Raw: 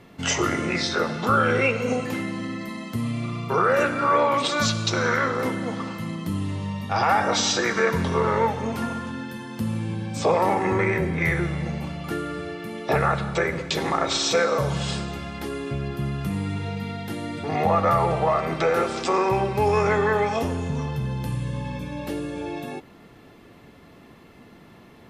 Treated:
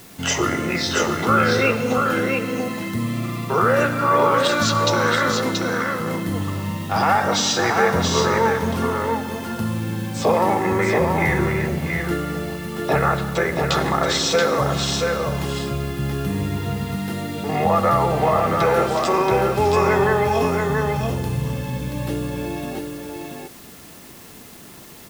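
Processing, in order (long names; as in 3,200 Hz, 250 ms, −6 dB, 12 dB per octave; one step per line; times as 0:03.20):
notch filter 2,300 Hz, Q 17
in parallel at −10 dB: bit-depth reduction 6 bits, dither triangular
on the sum: single-tap delay 679 ms −4 dB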